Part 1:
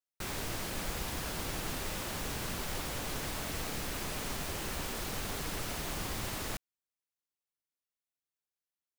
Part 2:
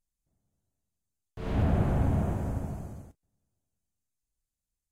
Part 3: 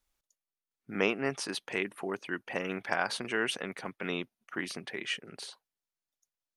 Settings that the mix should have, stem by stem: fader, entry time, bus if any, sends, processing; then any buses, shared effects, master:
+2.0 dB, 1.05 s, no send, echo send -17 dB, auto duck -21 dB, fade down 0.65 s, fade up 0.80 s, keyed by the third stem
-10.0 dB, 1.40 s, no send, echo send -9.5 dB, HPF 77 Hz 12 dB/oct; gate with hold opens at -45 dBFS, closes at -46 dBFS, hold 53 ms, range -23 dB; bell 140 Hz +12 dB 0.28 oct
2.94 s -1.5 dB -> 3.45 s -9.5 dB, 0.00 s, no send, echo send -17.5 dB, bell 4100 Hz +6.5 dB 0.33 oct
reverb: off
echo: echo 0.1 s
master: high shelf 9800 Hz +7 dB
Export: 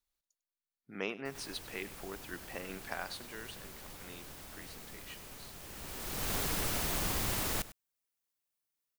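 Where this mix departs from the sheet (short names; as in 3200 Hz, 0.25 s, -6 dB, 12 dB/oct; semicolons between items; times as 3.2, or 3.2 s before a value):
stem 2: muted; stem 3 -1.5 dB -> -9.5 dB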